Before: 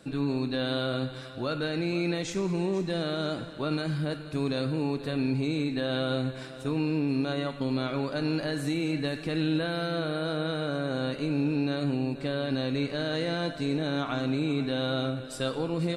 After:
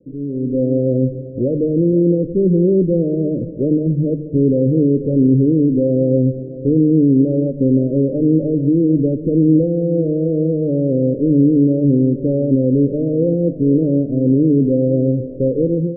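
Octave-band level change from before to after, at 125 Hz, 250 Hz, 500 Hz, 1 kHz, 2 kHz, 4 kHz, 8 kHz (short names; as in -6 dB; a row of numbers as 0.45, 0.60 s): +14.5 dB, +15.0 dB, +14.0 dB, under -15 dB, under -40 dB, under -40 dB, under -30 dB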